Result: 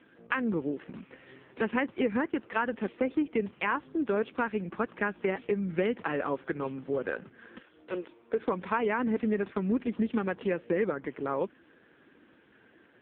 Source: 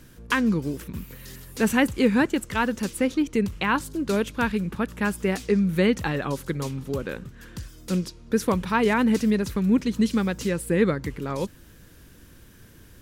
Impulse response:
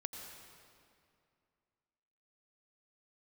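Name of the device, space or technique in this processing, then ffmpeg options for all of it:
voicemail: -filter_complex "[0:a]asettb=1/sr,asplit=3[s0][s1][s2];[s0]atrim=end=7.584[s3];[s1]atrim=start=7.58:end=8.39,asetpts=PTS-STARTPTS,afade=t=in:d=0.004:c=qsin,afade=t=out:st=0.806:d=0.004:c=qsin,highpass=f=280:w=0.5412,highpass=f=280:w=1.3066[s4];[s2]atrim=start=8.386[s5];[s3][s4]acrossfade=d=0.004:c1=hsin:c2=qsin[s6];[s6][s5]acrossfade=d=0.004:c1=qsin:c2=hsin,highpass=320,lowpass=2600,acompressor=threshold=0.0562:ratio=10,volume=1.26" -ar 8000 -c:a libopencore_amrnb -b:a 5150

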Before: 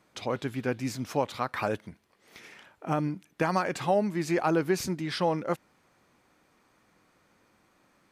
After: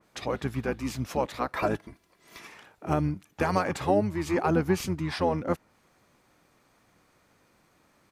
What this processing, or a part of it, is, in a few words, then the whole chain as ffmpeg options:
octave pedal: -filter_complex "[0:a]highshelf=f=6900:g=5,bandreject=f=3100:w=22,asettb=1/sr,asplit=3[s0][s1][s2];[s0]atrim=end=1.544[s3];[s1]atrim=start=1.54:end=2.47,asetpts=PTS-STARTPTS,afade=t=in:d=0.004:c=qsin,afade=t=out:st=0.926:d=0.004:c=qsin,aecho=1:1:3:0.73,atrim=end_sample=41013[s4];[s2]atrim=start=2.466[s5];[s3][s4]acrossfade=d=0.004:c1=hsin:c2=qsin[s6];[s6][s5]acrossfade=d=0.004:c1=qsin:c2=hsin,asplit=2[s7][s8];[s8]asetrate=22050,aresample=44100,atempo=2,volume=0.562[s9];[s7][s9]amix=inputs=2:normalize=0,adynamicequalizer=threshold=0.00501:dfrequency=2500:dqfactor=0.7:tfrequency=2500:tqfactor=0.7:attack=5:release=100:ratio=0.375:range=2.5:mode=cutabove:tftype=highshelf"

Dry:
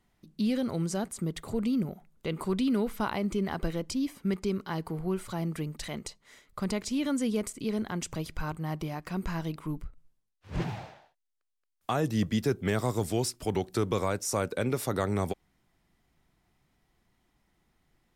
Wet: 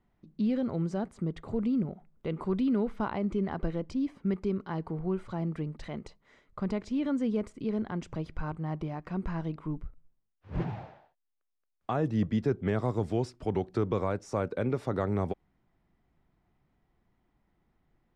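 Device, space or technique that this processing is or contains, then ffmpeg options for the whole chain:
through cloth: -af "lowpass=6300,highshelf=f=2700:g=-16.5"

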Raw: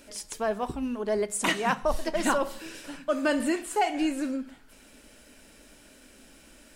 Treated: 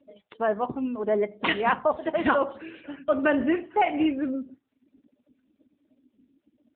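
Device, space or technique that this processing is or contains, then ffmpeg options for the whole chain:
mobile call with aggressive noise cancelling: -filter_complex "[0:a]asplit=3[s0][s1][s2];[s0]afade=t=out:st=1.3:d=0.02[s3];[s1]highshelf=f=6700:g=4,afade=t=in:st=1.3:d=0.02,afade=t=out:st=3.17:d=0.02[s4];[s2]afade=t=in:st=3.17:d=0.02[s5];[s3][s4][s5]amix=inputs=3:normalize=0,highpass=f=140:p=1,afftdn=nr=33:nf=-44,volume=1.58" -ar 8000 -c:a libopencore_amrnb -b:a 7950

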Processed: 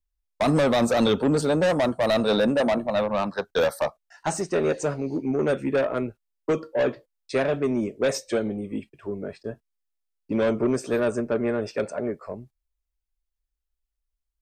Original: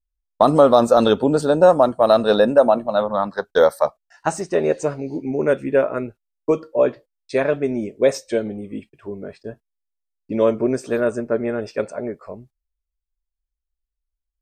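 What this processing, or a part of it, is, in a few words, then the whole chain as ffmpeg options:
one-band saturation: -filter_complex "[0:a]acrossover=split=210|2900[s0][s1][s2];[s1]asoftclip=type=tanh:threshold=0.112[s3];[s0][s3][s2]amix=inputs=3:normalize=0"

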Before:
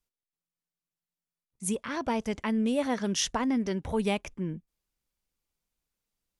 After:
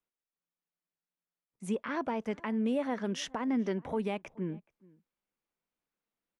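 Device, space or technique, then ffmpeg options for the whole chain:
DJ mixer with the lows and highs turned down: -filter_complex "[0:a]asettb=1/sr,asplit=3[s0][s1][s2];[s0]atrim=end=1.664[s3];[s1]atrim=start=1.66:end=2.17,asetpts=PTS-STARTPTS,afade=t=in:d=0.004:c=qsin,afade=t=out:st=0.506:d=0.004:c=qsin,lowpass=7700[s4];[s2]atrim=start=2.166[s5];[s3][s4]acrossfade=d=0.004:c1=hsin:c2=qsin[s6];[s6][s5]acrossfade=d=0.004:c1=qsin:c2=hsin,acrossover=split=160 2700:gain=0.141 1 0.224[s7][s8][s9];[s7][s8][s9]amix=inputs=3:normalize=0,alimiter=limit=0.075:level=0:latency=1:release=251,asplit=2[s10][s11];[s11]adelay=425.7,volume=0.0562,highshelf=f=4000:g=-9.58[s12];[s10][s12]amix=inputs=2:normalize=0"

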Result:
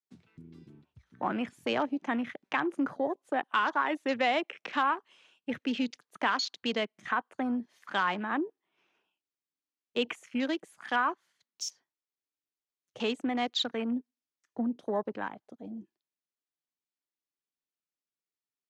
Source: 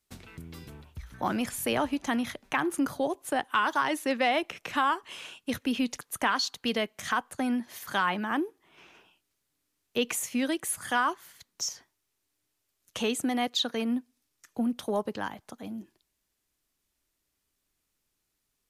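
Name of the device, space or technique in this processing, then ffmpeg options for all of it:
over-cleaned archive recording: -af "highpass=180,lowpass=6400,afwtdn=0.00891,volume=0.841"

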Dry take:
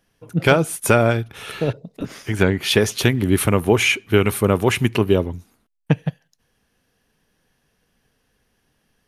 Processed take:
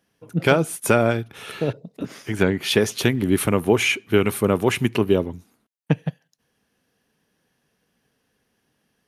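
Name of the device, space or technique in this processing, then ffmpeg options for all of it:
filter by subtraction: -filter_complex "[0:a]asplit=2[s0][s1];[s1]lowpass=210,volume=-1[s2];[s0][s2]amix=inputs=2:normalize=0,volume=0.708"

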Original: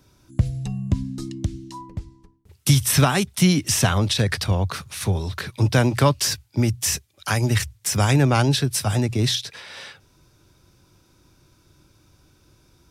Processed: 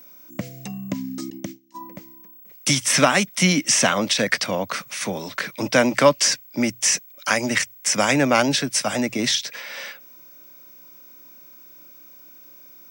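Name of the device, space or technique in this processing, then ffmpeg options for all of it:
old television with a line whistle: -filter_complex "[0:a]highpass=f=210:w=0.5412,highpass=f=210:w=1.3066,equalizer=f=390:t=q:w=4:g=-8,equalizer=f=570:t=q:w=4:g=5,equalizer=f=820:t=q:w=4:g=-3,equalizer=f=2100:t=q:w=4:g=6,equalizer=f=3900:t=q:w=4:g=-5,equalizer=f=6000:t=q:w=4:g=3,lowpass=f=8800:w=0.5412,lowpass=f=8800:w=1.3066,aeval=exprs='val(0)+0.00447*sin(2*PI*15734*n/s)':c=same,asettb=1/sr,asplit=3[s0][s1][s2];[s0]atrim=end=1.304[s3];[s1]atrim=start=1.3:end=1.81,asetpts=PTS-STARTPTS,afade=t=in:d=0.004:c=qsin,afade=t=out:st=0.506:d=0.004:c=qsin,agate=range=0.0708:threshold=0.0158:ratio=16:detection=peak[s4];[s2]atrim=start=1.806[s5];[s3][s4]acrossfade=d=0.004:c1=hsin:c2=qsin[s6];[s6][s5]acrossfade=d=0.004:c1=qsin:c2=hsin,volume=1.5"

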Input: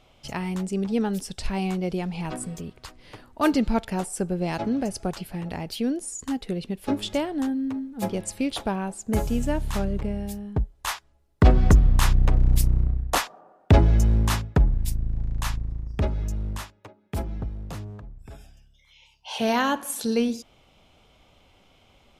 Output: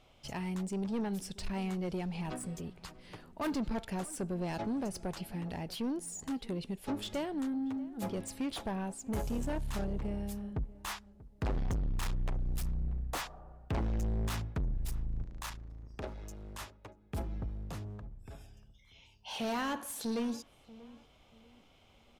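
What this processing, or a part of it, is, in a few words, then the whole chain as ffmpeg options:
saturation between pre-emphasis and de-emphasis: -filter_complex "[0:a]highshelf=f=3100:g=9.5,asoftclip=type=tanh:threshold=0.0596,highshelf=f=3100:g=-9.5,asettb=1/sr,asplit=3[s0][s1][s2];[s0]atrim=end=15.244[s3];[s1]atrim=start=15.24:end=16.61,asetpts=PTS-STARTPTS,afade=t=in:d=0.004:c=qsin,afade=t=out:st=1.366:d=0.004:c=qsin,bass=f=250:g=-11,treble=f=4000:g=1[s4];[s2]atrim=start=16.606[s5];[s3][s4]acrossfade=d=0.004:c1=hsin:c2=qsin[s6];[s6][s5]acrossfade=d=0.004:c1=qsin:c2=hsin,asplit=2[s7][s8];[s8]adelay=637,lowpass=f=1500:p=1,volume=0.112,asplit=2[s9][s10];[s10]adelay=637,lowpass=f=1500:p=1,volume=0.32,asplit=2[s11][s12];[s12]adelay=637,lowpass=f=1500:p=1,volume=0.32[s13];[s7][s9][s11][s13]amix=inputs=4:normalize=0,volume=0.531"

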